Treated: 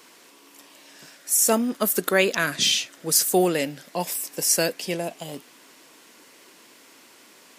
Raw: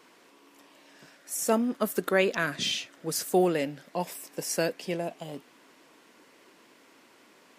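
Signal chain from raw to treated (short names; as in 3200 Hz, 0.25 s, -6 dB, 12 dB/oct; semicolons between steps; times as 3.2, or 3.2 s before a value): high shelf 3600 Hz +11.5 dB; gain +3 dB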